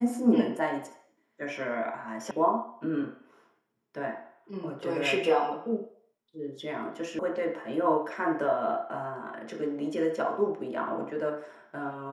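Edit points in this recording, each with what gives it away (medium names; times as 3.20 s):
2.31 s: sound stops dead
7.19 s: sound stops dead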